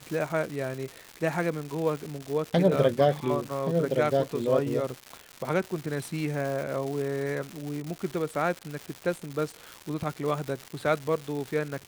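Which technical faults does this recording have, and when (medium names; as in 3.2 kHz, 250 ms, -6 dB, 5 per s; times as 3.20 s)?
crackle 310 per s -32 dBFS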